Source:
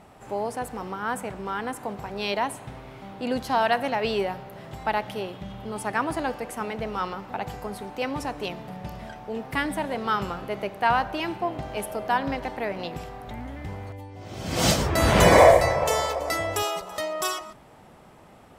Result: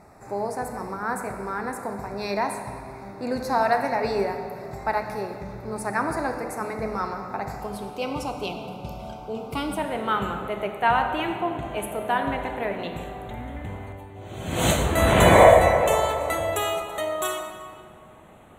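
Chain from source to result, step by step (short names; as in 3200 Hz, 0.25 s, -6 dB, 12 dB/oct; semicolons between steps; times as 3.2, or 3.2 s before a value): Butterworth band-stop 3100 Hz, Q 2, from 7.6 s 1800 Hz, from 9.77 s 5100 Hz; reverb RT60 2.0 s, pre-delay 3 ms, DRR 5 dB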